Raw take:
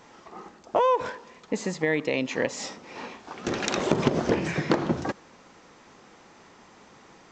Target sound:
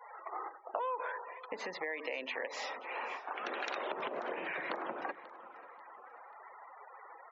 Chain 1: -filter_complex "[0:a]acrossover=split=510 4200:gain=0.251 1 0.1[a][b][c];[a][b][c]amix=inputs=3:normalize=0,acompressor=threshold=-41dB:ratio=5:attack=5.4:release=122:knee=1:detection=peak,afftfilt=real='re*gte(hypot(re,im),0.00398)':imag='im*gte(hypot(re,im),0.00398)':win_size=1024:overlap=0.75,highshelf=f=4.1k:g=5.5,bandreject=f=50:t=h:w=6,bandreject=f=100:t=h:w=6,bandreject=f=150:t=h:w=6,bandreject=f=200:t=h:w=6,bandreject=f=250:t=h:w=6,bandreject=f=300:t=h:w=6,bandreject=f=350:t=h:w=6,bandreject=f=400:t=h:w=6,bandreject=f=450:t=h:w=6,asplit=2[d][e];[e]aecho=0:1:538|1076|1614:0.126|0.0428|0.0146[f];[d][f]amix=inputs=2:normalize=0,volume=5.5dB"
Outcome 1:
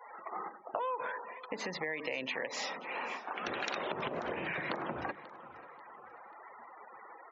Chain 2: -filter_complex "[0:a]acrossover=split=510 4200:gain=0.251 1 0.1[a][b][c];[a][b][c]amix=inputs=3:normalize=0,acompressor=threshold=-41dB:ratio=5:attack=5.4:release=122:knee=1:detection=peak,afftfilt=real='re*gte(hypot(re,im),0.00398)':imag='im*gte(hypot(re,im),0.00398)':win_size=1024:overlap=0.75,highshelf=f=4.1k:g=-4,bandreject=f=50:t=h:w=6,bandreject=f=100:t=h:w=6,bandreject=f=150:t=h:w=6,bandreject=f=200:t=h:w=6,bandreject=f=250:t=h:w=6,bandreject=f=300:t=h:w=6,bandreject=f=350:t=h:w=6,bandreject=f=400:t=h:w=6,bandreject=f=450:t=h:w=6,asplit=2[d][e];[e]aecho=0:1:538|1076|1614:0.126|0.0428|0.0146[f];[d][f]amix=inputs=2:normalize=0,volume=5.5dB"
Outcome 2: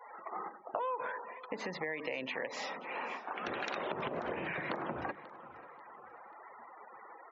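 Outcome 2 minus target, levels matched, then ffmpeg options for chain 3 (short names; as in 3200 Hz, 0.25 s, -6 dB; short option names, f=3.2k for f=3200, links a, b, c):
250 Hz band +5.0 dB
-filter_complex "[0:a]acrossover=split=510 4200:gain=0.251 1 0.1[a][b][c];[a][b][c]amix=inputs=3:normalize=0,acompressor=threshold=-41dB:ratio=5:attack=5.4:release=122:knee=1:detection=peak,highpass=350,afftfilt=real='re*gte(hypot(re,im),0.00398)':imag='im*gte(hypot(re,im),0.00398)':win_size=1024:overlap=0.75,highshelf=f=4.1k:g=-4,bandreject=f=50:t=h:w=6,bandreject=f=100:t=h:w=6,bandreject=f=150:t=h:w=6,bandreject=f=200:t=h:w=6,bandreject=f=250:t=h:w=6,bandreject=f=300:t=h:w=6,bandreject=f=350:t=h:w=6,bandreject=f=400:t=h:w=6,bandreject=f=450:t=h:w=6,asplit=2[d][e];[e]aecho=0:1:538|1076|1614:0.126|0.0428|0.0146[f];[d][f]amix=inputs=2:normalize=0,volume=5.5dB"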